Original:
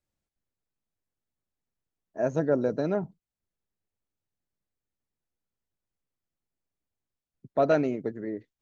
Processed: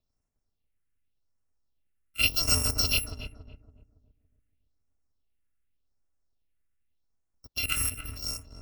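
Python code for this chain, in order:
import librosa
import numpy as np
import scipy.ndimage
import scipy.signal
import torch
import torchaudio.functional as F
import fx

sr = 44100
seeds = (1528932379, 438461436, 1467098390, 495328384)

p1 = fx.bit_reversed(x, sr, seeds[0], block=256)
p2 = fx.high_shelf(p1, sr, hz=6000.0, db=-11.5)
p3 = fx.level_steps(p2, sr, step_db=12, at=(7.56, 8.15), fade=0.02)
p4 = fx.phaser_stages(p3, sr, stages=4, low_hz=720.0, high_hz=3700.0, hz=0.86, feedback_pct=25)
p5 = fx.quant_dither(p4, sr, seeds[1], bits=6, dither='none')
p6 = p4 + (p5 * 10.0 ** (-11.0 / 20.0))
p7 = fx.echo_filtered(p6, sr, ms=281, feedback_pct=40, hz=840.0, wet_db=-4.5)
y = p7 * 10.0 ** (8.0 / 20.0)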